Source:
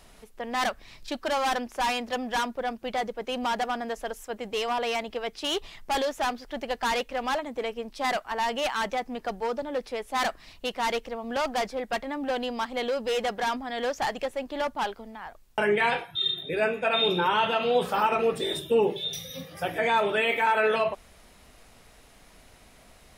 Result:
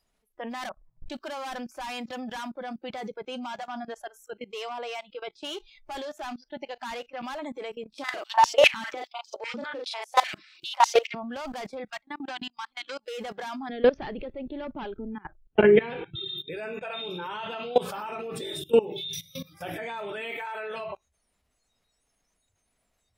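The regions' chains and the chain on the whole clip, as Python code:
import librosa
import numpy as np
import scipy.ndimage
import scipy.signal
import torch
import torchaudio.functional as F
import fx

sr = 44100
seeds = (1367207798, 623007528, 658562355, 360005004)

y = fx.chain(x, sr, fx.lowpass(hz=1100.0, slope=24),
    fx.comb(ms=6.3, depth=0.41), at=(0.69, 1.1))
y = fx.chain(y, sr, fx.high_shelf(hz=4400.0, db=-3.0),
    fx.comb_fb(f0_hz=120.0, decay_s=0.16, harmonics='all', damping=0.0, mix_pct=50), at=(3.22, 7.21))
y = fx.chain(y, sr, fx.peak_eq(hz=3000.0, db=3.0, octaves=1.6),
    fx.doubler(ms=39.0, db=-4.0),
    fx.filter_held_highpass(hz=10.0, low_hz=210.0, high_hz=5900.0), at=(7.94, 11.15))
y = fx.chain(y, sr, fx.peak_eq(hz=460.0, db=-14.5, octaves=0.76),
    fx.level_steps(step_db=18), at=(11.9, 13.08))
y = fx.chain(y, sr, fx.lowpass(hz=3900.0, slope=24),
    fx.low_shelf_res(hz=560.0, db=9.0, q=1.5), at=(13.69, 16.28))
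y = fx.noise_reduce_blind(y, sr, reduce_db=24)
y = fx.level_steps(y, sr, step_db=20)
y = y * librosa.db_to_amplitude(5.0)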